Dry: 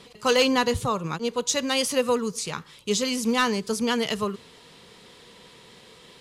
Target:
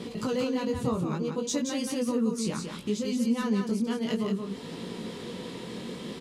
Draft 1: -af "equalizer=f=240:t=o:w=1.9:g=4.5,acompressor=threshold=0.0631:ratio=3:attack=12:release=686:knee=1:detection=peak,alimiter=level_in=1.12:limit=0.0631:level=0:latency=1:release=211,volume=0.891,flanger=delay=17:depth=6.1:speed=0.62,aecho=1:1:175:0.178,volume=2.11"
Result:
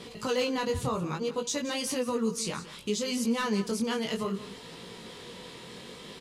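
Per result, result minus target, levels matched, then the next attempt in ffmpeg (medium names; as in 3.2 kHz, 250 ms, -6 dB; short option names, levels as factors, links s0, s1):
echo-to-direct -9.5 dB; 250 Hz band -4.0 dB
-af "equalizer=f=240:t=o:w=1.9:g=4.5,acompressor=threshold=0.0631:ratio=3:attack=12:release=686:knee=1:detection=peak,alimiter=level_in=1.12:limit=0.0631:level=0:latency=1:release=211,volume=0.891,flanger=delay=17:depth=6.1:speed=0.62,aecho=1:1:175:0.531,volume=2.11"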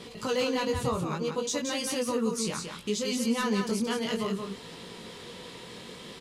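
250 Hz band -4.0 dB
-af "equalizer=f=240:t=o:w=1.9:g=16,acompressor=threshold=0.0631:ratio=3:attack=12:release=686:knee=1:detection=peak,alimiter=level_in=1.12:limit=0.0631:level=0:latency=1:release=211,volume=0.891,flanger=delay=17:depth=6.1:speed=0.62,aecho=1:1:175:0.531,volume=2.11"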